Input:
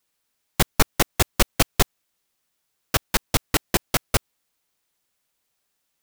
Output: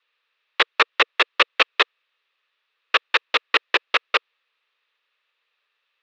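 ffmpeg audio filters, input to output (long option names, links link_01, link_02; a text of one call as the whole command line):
ffmpeg -i in.wav -af "highpass=frequency=450:width=0.5412,highpass=frequency=450:width=1.3066,equalizer=frequency=470:width_type=q:width=4:gain=4,equalizer=frequency=730:width_type=q:width=4:gain=-8,equalizer=frequency=1200:width_type=q:width=4:gain=8,equalizer=frequency=1800:width_type=q:width=4:gain=7,equalizer=frequency=2600:width_type=q:width=4:gain=10,equalizer=frequency=3700:width_type=q:width=4:gain=7,lowpass=frequency=3900:width=0.5412,lowpass=frequency=3900:width=1.3066,volume=1.5dB" out.wav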